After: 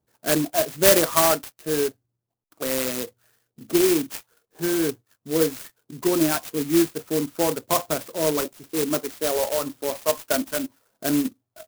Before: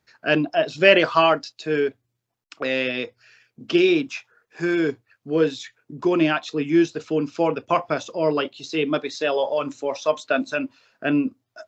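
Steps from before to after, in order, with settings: level-controlled noise filter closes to 860 Hz, open at -18 dBFS; sampling jitter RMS 0.12 ms; trim -1.5 dB

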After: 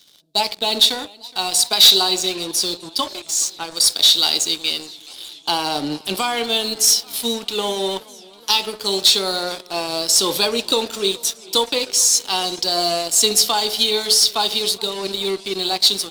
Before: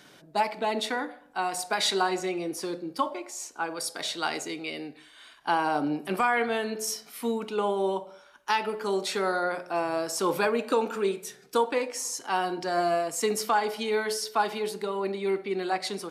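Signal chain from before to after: resonant high shelf 2.6 kHz +12.5 dB, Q 3; waveshaping leveller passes 3; modulated delay 422 ms, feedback 71%, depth 106 cents, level -23.5 dB; trim -7 dB

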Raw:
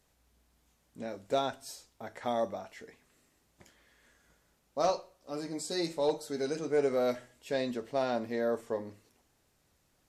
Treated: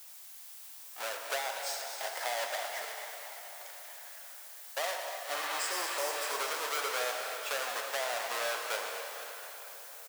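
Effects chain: square wave that keeps the level; added noise blue -56 dBFS; high-pass 650 Hz 24 dB/octave; in parallel at +1.5 dB: peak limiter -23.5 dBFS, peak gain reduction 9 dB; on the sum: spectral replace 5.37–6.33 s, 1.1–4.6 kHz; compression 4:1, threshold -31 dBFS, peak gain reduction 10 dB; on a send: frequency-shifting echo 240 ms, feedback 59%, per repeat +39 Hz, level -11 dB; on the sum: plate-style reverb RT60 4.1 s, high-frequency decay 0.85×, DRR 2.5 dB; trim -2 dB

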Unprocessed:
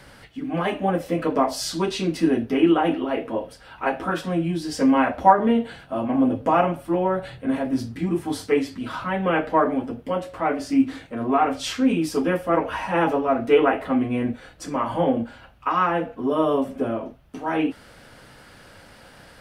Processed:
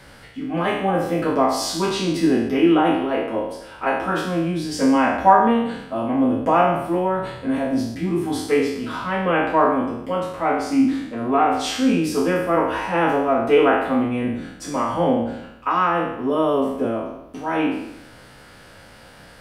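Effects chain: spectral sustain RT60 0.83 s

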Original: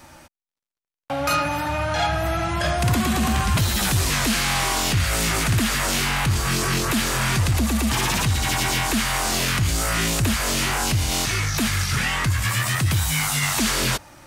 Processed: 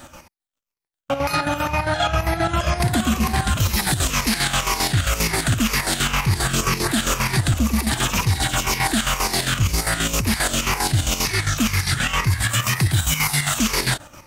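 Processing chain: drifting ripple filter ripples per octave 0.83, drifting -2 Hz, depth 8 dB; peak limiter -14 dBFS, peak gain reduction 6 dB; square tremolo 7.5 Hz, depth 60%, duty 55%; trim +4.5 dB

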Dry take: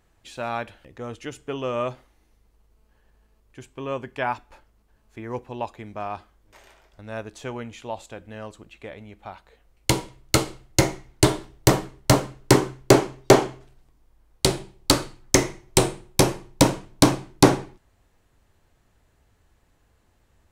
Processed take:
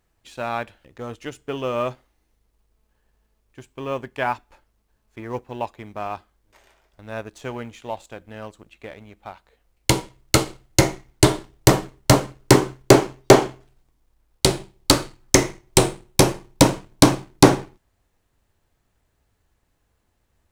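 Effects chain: companding laws mixed up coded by A; trim +3 dB

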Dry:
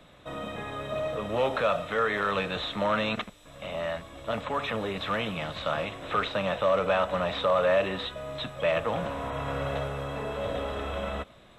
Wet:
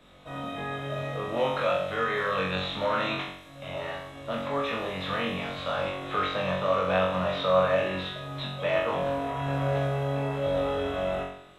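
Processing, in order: flutter echo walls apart 3.7 m, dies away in 0.67 s; trim -4 dB

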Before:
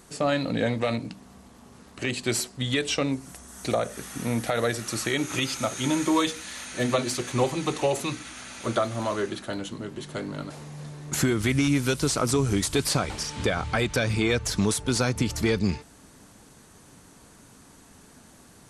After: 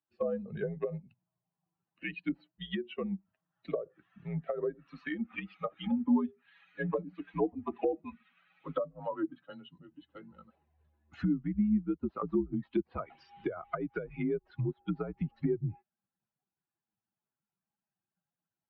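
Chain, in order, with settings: expander on every frequency bin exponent 2; mistuned SSB -72 Hz 230–3100 Hz; low-pass that closes with the level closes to 460 Hz, closed at -28 dBFS

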